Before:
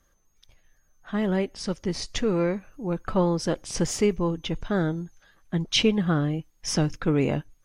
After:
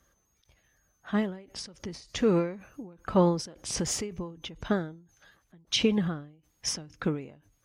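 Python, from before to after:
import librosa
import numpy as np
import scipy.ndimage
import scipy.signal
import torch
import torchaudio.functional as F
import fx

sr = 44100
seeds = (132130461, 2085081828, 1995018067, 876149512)

p1 = scipy.signal.sosfilt(scipy.signal.butter(4, 42.0, 'highpass', fs=sr, output='sos'), x)
p2 = fx.rider(p1, sr, range_db=10, speed_s=0.5)
p3 = p1 + (p2 * librosa.db_to_amplitude(2.0))
p4 = fx.end_taper(p3, sr, db_per_s=110.0)
y = p4 * librosa.db_to_amplitude(-6.0)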